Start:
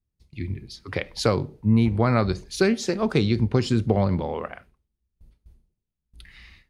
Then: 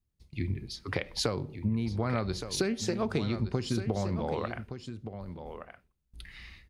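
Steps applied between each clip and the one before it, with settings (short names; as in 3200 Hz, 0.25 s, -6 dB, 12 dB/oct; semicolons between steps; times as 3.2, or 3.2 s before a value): compressor 6:1, threshold -27 dBFS, peak gain reduction 12.5 dB; echo 1.169 s -10 dB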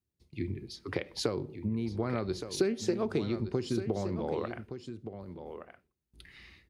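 HPF 71 Hz; bell 360 Hz +8 dB 0.86 oct; gain -4.5 dB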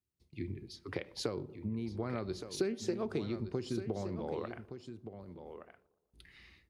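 analogue delay 0.118 s, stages 1024, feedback 56%, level -22.5 dB; gain -5 dB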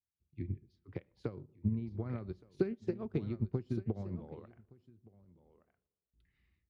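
tone controls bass +11 dB, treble -13 dB; upward expander 2.5:1, over -39 dBFS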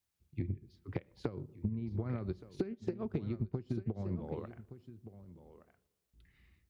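compressor 10:1, threshold -41 dBFS, peak gain reduction 16.5 dB; gain +9 dB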